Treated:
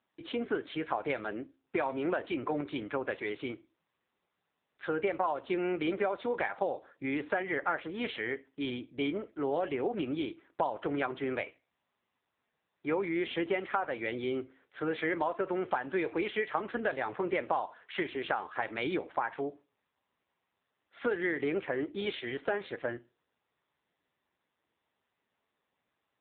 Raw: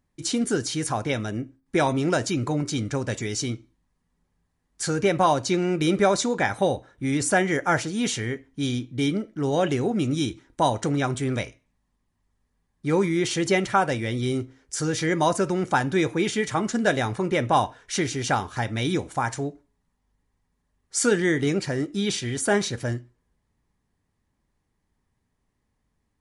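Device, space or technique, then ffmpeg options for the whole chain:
voicemail: -af "highpass=380,lowpass=3100,equalizer=f=220:w=3.6:g=-4.5,acompressor=threshold=0.0501:ratio=10" -ar 8000 -c:a libopencore_amrnb -b:a 6700

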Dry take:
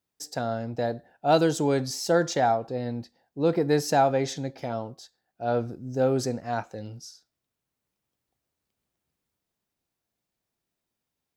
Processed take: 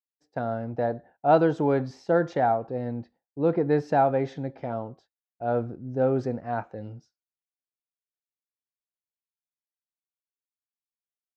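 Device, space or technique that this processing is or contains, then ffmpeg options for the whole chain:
hearing-loss simulation: -filter_complex "[0:a]asettb=1/sr,asplit=3[s0][s1][s2];[s0]atrim=end=0.764[s3];[s1]atrim=start=0.76:end=1.88,asetpts=PTS-STARTPTS,afade=t=in:d=0.004:c=qsin,afade=t=out:st=1.116:d=0.004:c=qsin,equalizer=f=1000:w=0.84:g=3[s4];[s2]atrim=start=1.876[s5];[s3][s4]acrossfade=d=0.004:c1=hsin:c2=qsin[s6];[s6][s5]acrossfade=d=0.004:c1=qsin:c2=hsin,lowpass=1800,agate=range=0.0224:threshold=0.00562:ratio=3:detection=peak"

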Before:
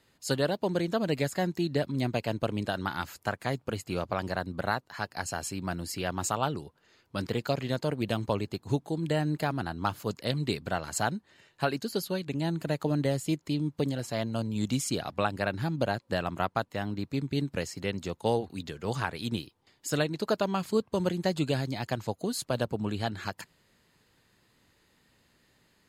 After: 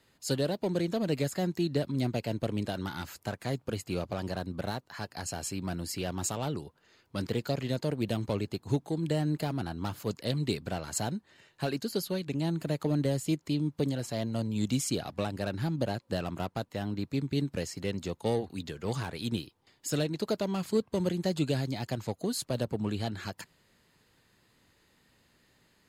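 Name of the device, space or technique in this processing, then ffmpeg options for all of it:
one-band saturation: -filter_complex "[0:a]acrossover=split=570|3300[s0][s1][s2];[s1]asoftclip=type=tanh:threshold=0.0119[s3];[s0][s3][s2]amix=inputs=3:normalize=0"

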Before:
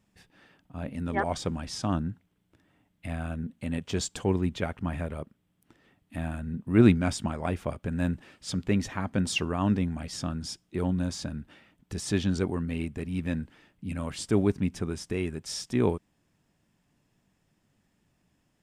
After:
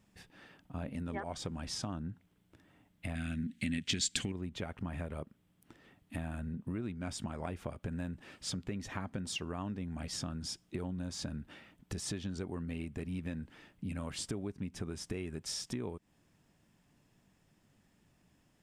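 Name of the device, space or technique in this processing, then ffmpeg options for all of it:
serial compression, leveller first: -filter_complex "[0:a]acompressor=threshold=0.0398:ratio=2.5,acompressor=threshold=0.0126:ratio=5,asettb=1/sr,asplit=3[s0][s1][s2];[s0]atrim=end=3.154[s3];[s1]atrim=start=3.15:end=4.32,asetpts=PTS-STARTPTS,afade=t=in:d=0.004:c=qsin,afade=t=out:st=1.166:d=0.004:c=qsin,equalizer=f=250:t=o:w=1:g=8,equalizer=f=500:t=o:w=1:g=-9,equalizer=f=1000:t=o:w=1:g=-11,equalizer=f=2000:t=o:w=1:g=11,equalizer=f=4000:t=o:w=1:g=8,equalizer=f=8000:t=o:w=1:g=7[s4];[s2]atrim=start=4.316[s5];[s3][s4]acrossfade=d=0.004:c1=hsin:c2=qsin[s6];[s6][s5]acrossfade=d=0.004:c1=qsin:c2=hsin,volume=1.19"

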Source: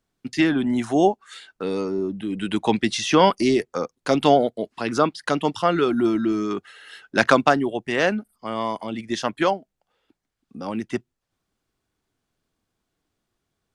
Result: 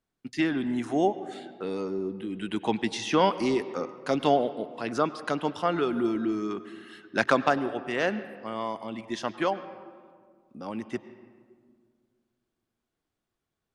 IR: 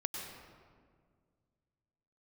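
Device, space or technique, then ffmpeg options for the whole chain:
filtered reverb send: -filter_complex "[0:a]asplit=2[s0][s1];[s1]highpass=f=210:p=1,lowpass=4000[s2];[1:a]atrim=start_sample=2205[s3];[s2][s3]afir=irnorm=-1:irlink=0,volume=0.355[s4];[s0][s4]amix=inputs=2:normalize=0,volume=0.376"

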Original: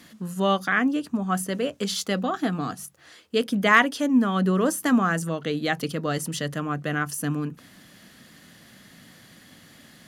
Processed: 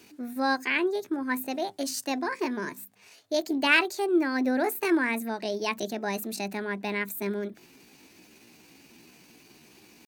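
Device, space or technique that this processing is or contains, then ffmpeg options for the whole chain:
chipmunk voice: -af "asetrate=60591,aresample=44100,atempo=0.727827,volume=0.631"

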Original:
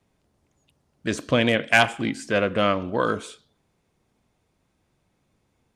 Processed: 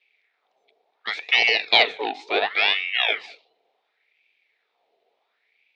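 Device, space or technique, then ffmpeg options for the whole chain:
voice changer toy: -af "aeval=exprs='val(0)*sin(2*PI*1500*n/s+1500*0.65/0.7*sin(2*PI*0.7*n/s))':c=same,highpass=400,equalizer=f=440:t=q:w=4:g=10,equalizer=f=720:t=q:w=4:g=7,equalizer=f=1100:t=q:w=4:g=-7,equalizer=f=1500:t=q:w=4:g=-7,equalizer=f=2300:t=q:w=4:g=8,equalizer=f=3700:t=q:w=4:g=9,lowpass=f=4700:w=0.5412,lowpass=f=4700:w=1.3066"

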